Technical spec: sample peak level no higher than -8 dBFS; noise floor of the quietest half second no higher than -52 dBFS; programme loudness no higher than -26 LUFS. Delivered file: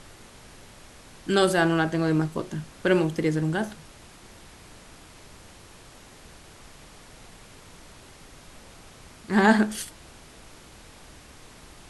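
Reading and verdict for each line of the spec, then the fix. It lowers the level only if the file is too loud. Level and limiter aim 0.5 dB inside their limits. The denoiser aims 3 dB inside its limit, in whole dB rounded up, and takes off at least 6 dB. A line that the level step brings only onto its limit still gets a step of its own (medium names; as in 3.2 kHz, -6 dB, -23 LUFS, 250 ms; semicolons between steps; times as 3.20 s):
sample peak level -5.0 dBFS: fail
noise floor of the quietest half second -49 dBFS: fail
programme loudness -24.0 LUFS: fail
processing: noise reduction 6 dB, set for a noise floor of -49 dBFS; trim -2.5 dB; peak limiter -8.5 dBFS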